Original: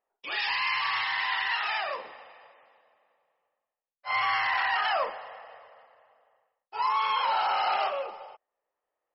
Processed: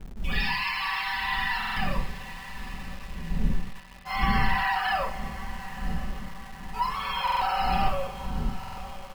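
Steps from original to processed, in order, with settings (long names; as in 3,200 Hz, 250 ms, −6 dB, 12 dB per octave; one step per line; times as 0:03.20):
wind on the microphone 100 Hz −32 dBFS
comb filter 5.2 ms, depth 76%
feedback delay with all-pass diffusion 1,038 ms, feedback 52%, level −14.5 dB
convolution reverb, pre-delay 4 ms, DRR 3.5 dB
in parallel at −5 dB: bit reduction 6 bits
on the sum: buffer that repeats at 0:01.58/0:07.23/0:08.59, samples 2,048, times 3
level −8 dB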